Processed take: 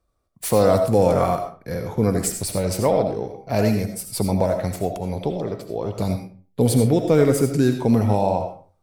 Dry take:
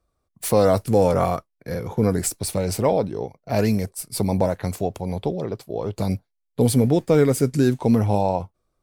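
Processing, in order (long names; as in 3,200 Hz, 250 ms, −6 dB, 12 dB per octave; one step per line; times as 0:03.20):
comb and all-pass reverb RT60 0.4 s, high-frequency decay 0.7×, pre-delay 40 ms, DRR 5.5 dB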